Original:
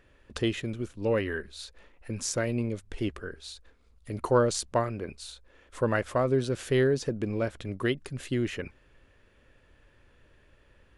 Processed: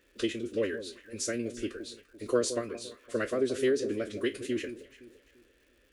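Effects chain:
peak hold with a decay on every bin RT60 0.32 s
parametric band 76 Hz −13 dB 0.67 octaves
phase-vocoder stretch with locked phases 0.54×
high-pass filter 50 Hz
phaser with its sweep stopped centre 360 Hz, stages 4
delay that swaps between a low-pass and a high-pass 171 ms, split 900 Hz, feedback 56%, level −11 dB
surface crackle 260 per second −56 dBFS

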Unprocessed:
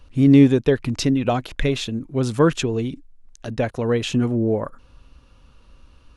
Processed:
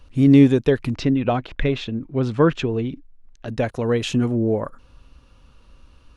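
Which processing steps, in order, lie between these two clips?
0:00.94–0:03.48: low-pass filter 3,200 Hz 12 dB per octave

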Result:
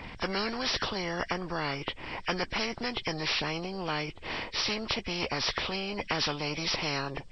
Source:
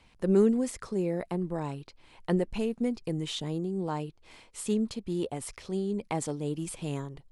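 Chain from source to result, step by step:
hearing-aid frequency compression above 1,500 Hz 1.5 to 1
every bin compressed towards the loudest bin 4 to 1
level −1.5 dB

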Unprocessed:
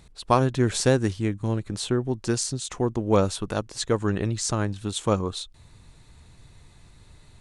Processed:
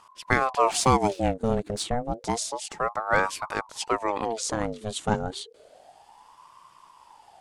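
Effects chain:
0:00.57–0:01.83: leveller curve on the samples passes 1
ring modulator whose carrier an LFO sweeps 680 Hz, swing 55%, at 0.3 Hz

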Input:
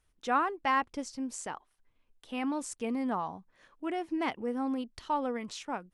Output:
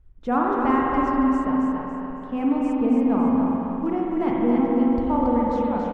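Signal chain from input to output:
one scale factor per block 5 bits
RIAA equalisation playback
reverb reduction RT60 1.5 s
tilt shelving filter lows +5 dB, about 1,400 Hz
on a send: repeating echo 278 ms, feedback 37%, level −5 dB
on the sum: spring reverb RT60 3.4 s, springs 42/50 ms, chirp 80 ms, DRR −3.5 dB

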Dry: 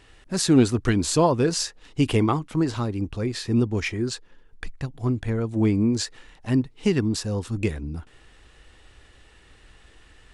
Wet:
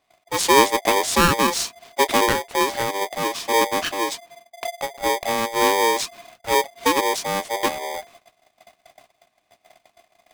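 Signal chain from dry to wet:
noise gate −48 dBFS, range −19 dB
ring modulator with a square carrier 690 Hz
level +2 dB

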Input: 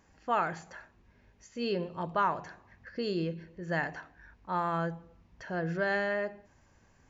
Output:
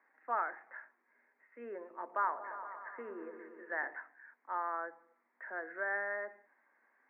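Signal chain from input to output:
Butterworth low-pass 2,100 Hz 72 dB per octave
treble cut that deepens with the level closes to 1,600 Hz, closed at −28.5 dBFS
Butterworth high-pass 220 Hz 72 dB per octave
first difference
0:01.79–0:03.94: echo whose low-pass opens from repeat to repeat 117 ms, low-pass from 400 Hz, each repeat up 1 octave, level −6 dB
level +12.5 dB

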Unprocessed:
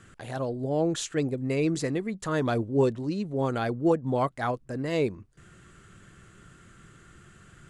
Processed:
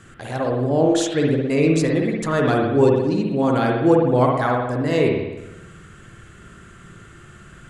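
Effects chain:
spring reverb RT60 1 s, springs 56 ms, chirp 75 ms, DRR −0.5 dB
level +6 dB

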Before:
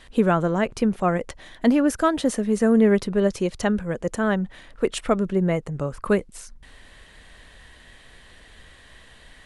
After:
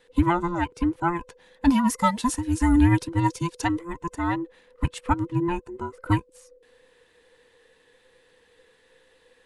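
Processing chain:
frequency inversion band by band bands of 500 Hz
0:01.69–0:03.93: high-shelf EQ 3,700 Hz +9 dB
expander for the loud parts 1.5 to 1, over −37 dBFS

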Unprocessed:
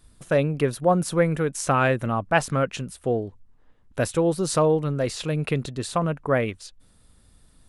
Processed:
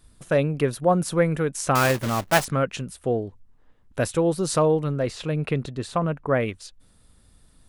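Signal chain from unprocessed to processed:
0:01.75–0:02.45: one scale factor per block 3 bits
0:04.96–0:06.41: high-shelf EQ 4,600 Hz −9 dB

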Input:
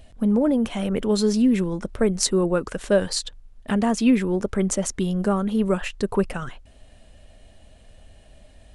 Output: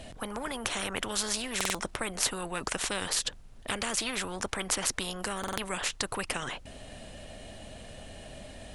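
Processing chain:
buffer that repeats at 0:01.56/0:05.39, samples 2,048, times 3
every bin compressed towards the loudest bin 4 to 1
level −4.5 dB

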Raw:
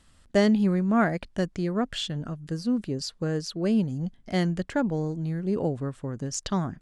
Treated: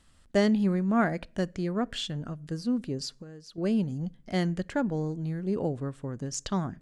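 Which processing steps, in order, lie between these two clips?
0:03.12–0:03.58: downward compressor 10 to 1, threshold −40 dBFS, peak gain reduction 16.5 dB
on a send: convolution reverb RT60 0.50 s, pre-delay 3 ms, DRR 22.5 dB
on the sum: level −2.5 dB

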